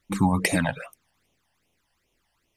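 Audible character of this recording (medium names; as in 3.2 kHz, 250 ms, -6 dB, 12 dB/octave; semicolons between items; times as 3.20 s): phasing stages 12, 2.5 Hz, lowest notch 380–1600 Hz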